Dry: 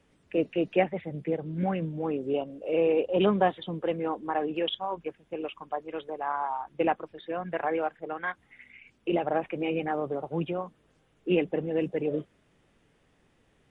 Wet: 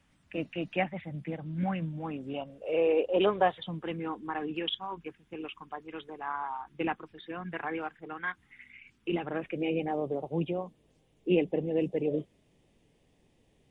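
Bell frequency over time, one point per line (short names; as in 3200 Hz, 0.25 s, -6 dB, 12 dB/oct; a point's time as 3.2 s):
bell -14.5 dB 0.8 oct
2.35 s 430 Hz
3.14 s 130 Hz
3.89 s 590 Hz
9.2 s 590 Hz
9.79 s 1400 Hz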